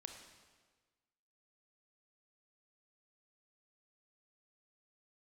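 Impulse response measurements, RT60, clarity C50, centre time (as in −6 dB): 1.4 s, 5.5 dB, 35 ms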